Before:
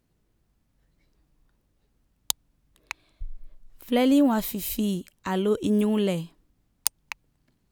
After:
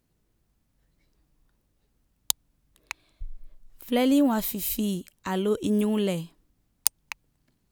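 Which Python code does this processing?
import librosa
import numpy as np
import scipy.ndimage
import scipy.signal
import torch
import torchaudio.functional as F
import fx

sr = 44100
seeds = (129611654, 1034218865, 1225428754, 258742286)

y = fx.high_shelf(x, sr, hz=5600.0, db=4.5)
y = F.gain(torch.from_numpy(y), -1.5).numpy()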